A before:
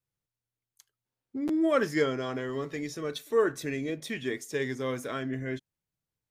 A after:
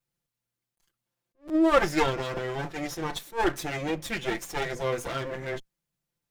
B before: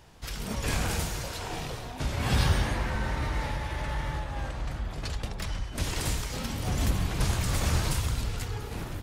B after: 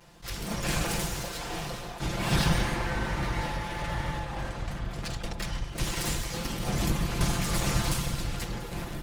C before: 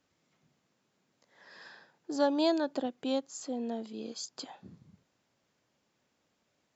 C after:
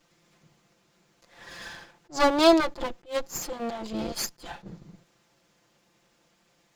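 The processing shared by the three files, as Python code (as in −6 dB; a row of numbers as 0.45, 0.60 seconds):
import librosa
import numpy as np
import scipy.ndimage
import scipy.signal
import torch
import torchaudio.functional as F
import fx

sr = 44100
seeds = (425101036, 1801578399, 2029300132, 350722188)

y = fx.lower_of_two(x, sr, delay_ms=5.8)
y = fx.attack_slew(y, sr, db_per_s=270.0)
y = y * 10.0 ** (-30 / 20.0) / np.sqrt(np.mean(np.square(y)))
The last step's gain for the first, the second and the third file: +5.5, +2.0, +12.0 decibels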